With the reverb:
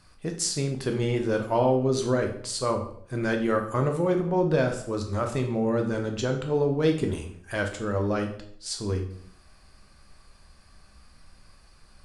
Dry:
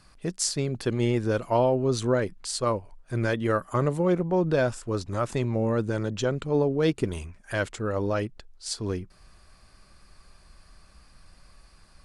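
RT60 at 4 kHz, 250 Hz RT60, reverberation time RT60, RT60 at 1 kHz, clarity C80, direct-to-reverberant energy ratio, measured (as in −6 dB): 0.50 s, 0.70 s, 0.60 s, 0.55 s, 12.0 dB, 3.5 dB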